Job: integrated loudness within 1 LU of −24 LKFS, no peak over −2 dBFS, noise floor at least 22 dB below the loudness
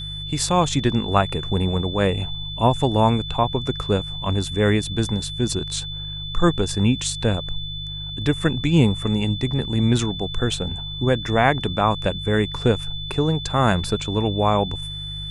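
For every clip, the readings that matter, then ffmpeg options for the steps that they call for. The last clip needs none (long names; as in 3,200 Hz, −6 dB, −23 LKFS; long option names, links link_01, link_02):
mains hum 50 Hz; hum harmonics up to 150 Hz; level of the hum −32 dBFS; interfering tone 3,500 Hz; level of the tone −31 dBFS; integrated loudness −22.0 LKFS; sample peak −3.0 dBFS; target loudness −24.0 LKFS
→ -af "bandreject=frequency=50:width_type=h:width=4,bandreject=frequency=100:width_type=h:width=4,bandreject=frequency=150:width_type=h:width=4"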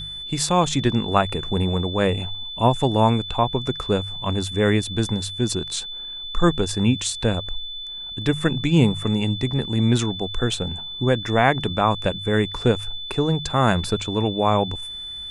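mains hum none found; interfering tone 3,500 Hz; level of the tone −31 dBFS
→ -af "bandreject=frequency=3500:width=30"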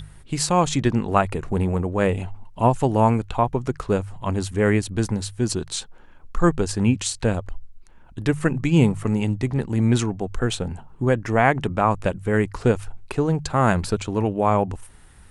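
interfering tone none found; integrated loudness −22.5 LKFS; sample peak −3.0 dBFS; target loudness −24.0 LKFS
→ -af "volume=-1.5dB"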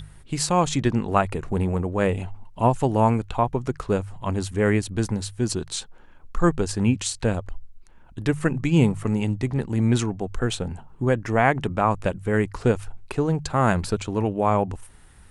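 integrated loudness −24.0 LKFS; sample peak −4.5 dBFS; background noise floor −48 dBFS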